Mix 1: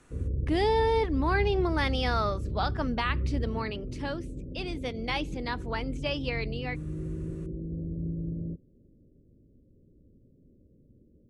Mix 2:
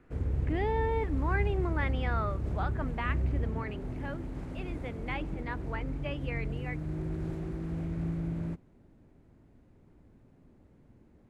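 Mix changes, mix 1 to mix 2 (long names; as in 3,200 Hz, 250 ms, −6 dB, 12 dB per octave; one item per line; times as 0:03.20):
speech: add transistor ladder low-pass 2,700 Hz, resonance 30%
background: remove Butterworth low-pass 570 Hz 72 dB per octave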